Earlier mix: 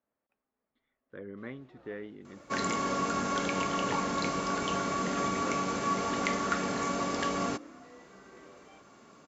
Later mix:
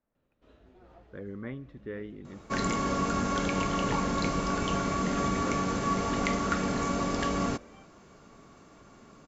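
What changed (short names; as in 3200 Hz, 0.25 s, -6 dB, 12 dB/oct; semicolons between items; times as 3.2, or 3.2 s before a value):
first sound: entry -0.95 s; master: remove HPF 290 Hz 6 dB/oct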